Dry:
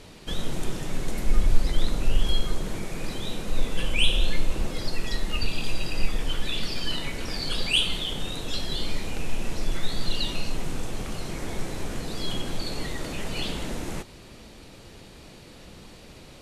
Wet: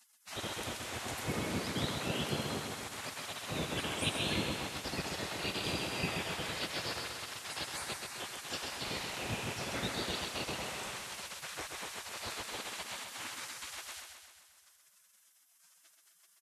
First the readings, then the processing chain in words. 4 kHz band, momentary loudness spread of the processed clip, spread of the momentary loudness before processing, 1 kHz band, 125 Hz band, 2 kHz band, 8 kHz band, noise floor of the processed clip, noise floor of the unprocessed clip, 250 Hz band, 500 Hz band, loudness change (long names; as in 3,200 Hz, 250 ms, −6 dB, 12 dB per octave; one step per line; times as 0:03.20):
−8.5 dB, 7 LU, 20 LU, −1.5 dB, −10.0 dB, −4.0 dB, −2.0 dB, −67 dBFS, −47 dBFS, −7.0 dB, −5.0 dB, −7.0 dB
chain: gate on every frequency bin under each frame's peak −30 dB weak
bass and treble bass +5 dB, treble −3 dB
repeating echo 130 ms, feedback 59%, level −5.5 dB